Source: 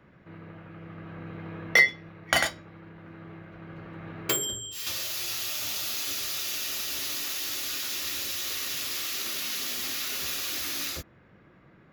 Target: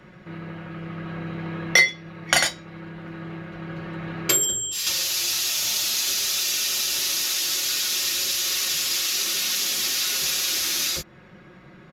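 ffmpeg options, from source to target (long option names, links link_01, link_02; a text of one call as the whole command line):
ffmpeg -i in.wav -filter_complex "[0:a]equalizer=frequency=6300:width=0.57:gain=7.5,aecho=1:1:5.5:0.5,asplit=2[link_01][link_02];[link_02]acompressor=threshold=-36dB:ratio=6,volume=2.5dB[link_03];[link_01][link_03]amix=inputs=2:normalize=0,aresample=32000,aresample=44100" out.wav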